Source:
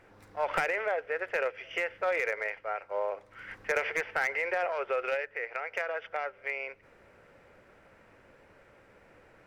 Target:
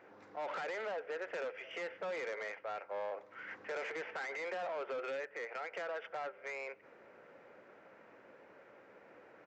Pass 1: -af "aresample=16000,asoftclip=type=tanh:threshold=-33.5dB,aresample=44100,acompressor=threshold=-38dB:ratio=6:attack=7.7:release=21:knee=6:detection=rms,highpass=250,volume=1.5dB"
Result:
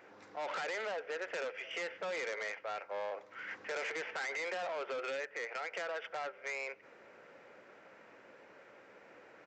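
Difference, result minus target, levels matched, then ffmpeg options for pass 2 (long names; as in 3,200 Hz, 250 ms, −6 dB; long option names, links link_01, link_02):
4,000 Hz band +4.5 dB
-af "aresample=16000,asoftclip=type=tanh:threshold=-33.5dB,aresample=44100,acompressor=threshold=-38dB:ratio=6:attack=7.7:release=21:knee=6:detection=rms,highpass=250,highshelf=frequency=2700:gain=-10.5,volume=1.5dB"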